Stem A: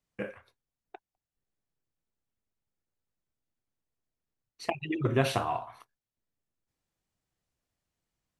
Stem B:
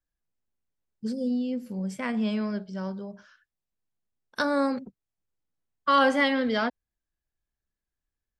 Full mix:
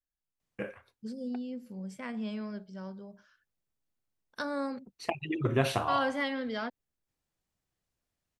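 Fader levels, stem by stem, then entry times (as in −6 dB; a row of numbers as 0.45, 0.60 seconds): −1.0, −9.0 decibels; 0.40, 0.00 seconds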